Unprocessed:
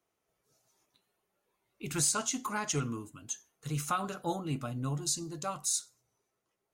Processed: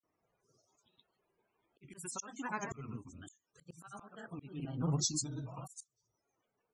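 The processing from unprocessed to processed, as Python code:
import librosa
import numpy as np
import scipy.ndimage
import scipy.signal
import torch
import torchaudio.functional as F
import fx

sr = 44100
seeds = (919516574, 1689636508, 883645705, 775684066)

y = fx.granulator(x, sr, seeds[0], grain_ms=100.0, per_s=20.0, spray_ms=100.0, spread_st=3)
y = fx.spec_topn(y, sr, count=64)
y = fx.auto_swell(y, sr, attack_ms=544.0)
y = y * 10.0 ** (2.5 / 20.0)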